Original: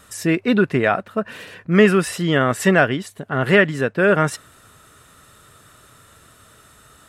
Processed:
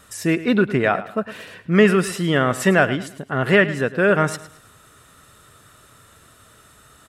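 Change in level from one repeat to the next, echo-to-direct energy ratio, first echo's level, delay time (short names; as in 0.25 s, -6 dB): -9.5 dB, -15.0 dB, -15.5 dB, 0.107 s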